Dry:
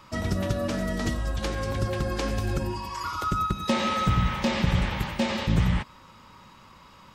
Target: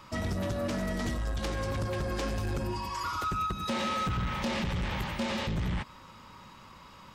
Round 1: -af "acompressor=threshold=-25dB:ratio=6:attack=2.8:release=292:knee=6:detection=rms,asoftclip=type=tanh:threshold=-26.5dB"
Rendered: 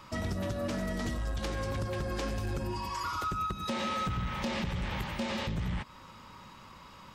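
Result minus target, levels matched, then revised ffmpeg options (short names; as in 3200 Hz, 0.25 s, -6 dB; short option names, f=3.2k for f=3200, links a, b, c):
compressor: peak gain reduction +5 dB
-af "acompressor=threshold=-19dB:ratio=6:attack=2.8:release=292:knee=6:detection=rms,asoftclip=type=tanh:threshold=-26.5dB"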